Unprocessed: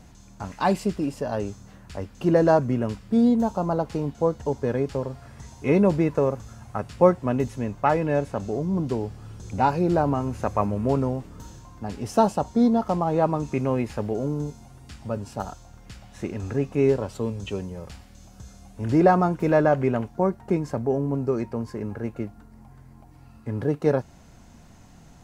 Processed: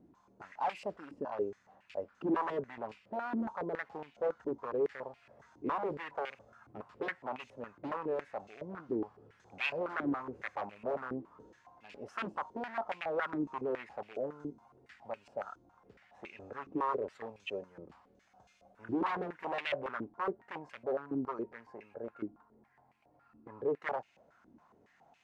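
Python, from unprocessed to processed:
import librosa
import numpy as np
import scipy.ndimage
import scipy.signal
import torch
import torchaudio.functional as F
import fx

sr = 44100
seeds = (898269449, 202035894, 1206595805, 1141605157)

y = 10.0 ** (-19.5 / 20.0) * (np.abs((x / 10.0 ** (-19.5 / 20.0) + 3.0) % 4.0 - 2.0) - 1.0)
y = fx.filter_held_bandpass(y, sr, hz=7.2, low_hz=320.0, high_hz=2500.0)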